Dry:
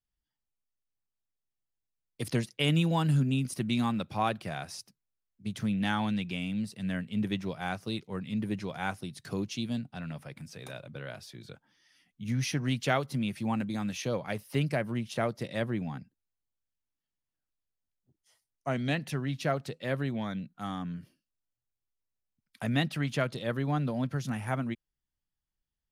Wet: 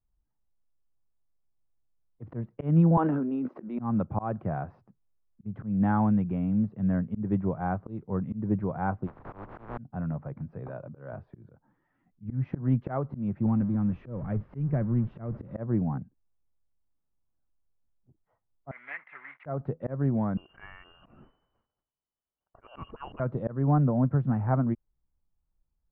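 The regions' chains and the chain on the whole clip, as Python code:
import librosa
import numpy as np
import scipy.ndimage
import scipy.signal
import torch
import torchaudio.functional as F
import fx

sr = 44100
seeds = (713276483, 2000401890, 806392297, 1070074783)

y = fx.chain(x, sr, fx.highpass(hz=300.0, slope=24),
    fx.sustainer(db_per_s=27.0), at=(2.97, 3.79))
y = fx.spec_flatten(y, sr, power=0.11, at=(9.06, 9.77), fade=0.02)
y = fx.pre_swell(y, sr, db_per_s=83.0, at=(9.06, 9.77), fade=0.02)
y = fx.chain(y, sr, fx.highpass(hz=170.0, slope=6),
    fx.notch(hz=2100.0, q=15.0), at=(10.68, 11.13))
y = fx.chain(y, sr, fx.zero_step(step_db=-36.5),
    fx.peak_eq(hz=790.0, db=-12.0, octaves=2.2), at=(13.46, 15.55))
y = fx.chain(y, sr, fx.block_float(bits=3),
    fx.highpass_res(hz=2100.0, q=12.0),
    fx.air_absorb(metres=210.0), at=(18.71, 19.46))
y = fx.chain(y, sr, fx.freq_invert(carrier_hz=3000),
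    fx.sustainer(db_per_s=47.0), at=(20.37, 23.2))
y = scipy.signal.sosfilt(scipy.signal.butter(4, 1200.0, 'lowpass', fs=sr, output='sos'), y)
y = fx.low_shelf(y, sr, hz=92.0, db=10.0)
y = fx.auto_swell(y, sr, attack_ms=194.0)
y = y * librosa.db_to_amplitude(5.0)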